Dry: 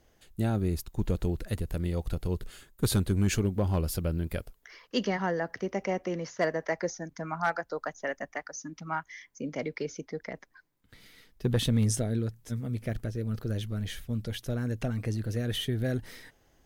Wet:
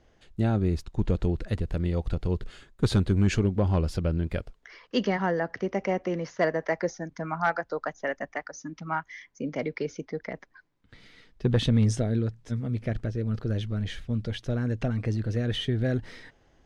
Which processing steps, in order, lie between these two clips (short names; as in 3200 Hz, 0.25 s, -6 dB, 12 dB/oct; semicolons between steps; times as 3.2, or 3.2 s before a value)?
air absorption 110 m; gain +3.5 dB